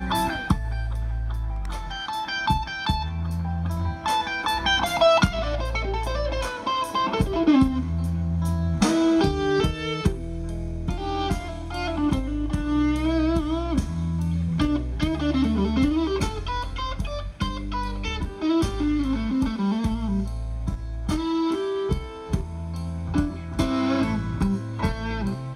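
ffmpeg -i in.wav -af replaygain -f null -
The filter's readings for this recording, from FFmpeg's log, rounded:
track_gain = +5.6 dB
track_peak = 0.337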